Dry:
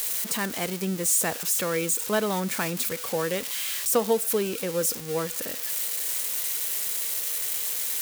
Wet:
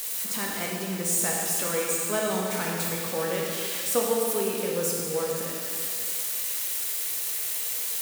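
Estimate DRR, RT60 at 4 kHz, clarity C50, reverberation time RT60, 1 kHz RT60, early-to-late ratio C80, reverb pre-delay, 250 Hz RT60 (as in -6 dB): -2.5 dB, 2.3 s, -0.5 dB, 2.5 s, 2.5 s, 1.0 dB, 6 ms, 2.5 s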